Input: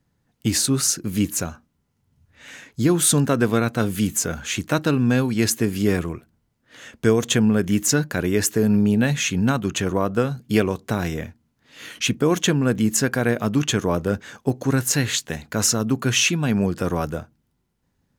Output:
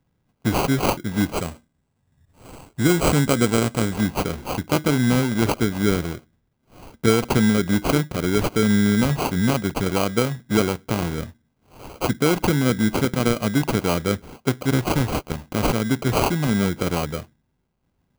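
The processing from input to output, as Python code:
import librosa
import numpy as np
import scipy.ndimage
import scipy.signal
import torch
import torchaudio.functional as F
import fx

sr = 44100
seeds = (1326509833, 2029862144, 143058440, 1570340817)

y = fx.sample_hold(x, sr, seeds[0], rate_hz=1800.0, jitter_pct=0)
y = fx.peak_eq(y, sr, hz=8000.0, db=10.5, octaves=0.21, at=(1.37, 3.96))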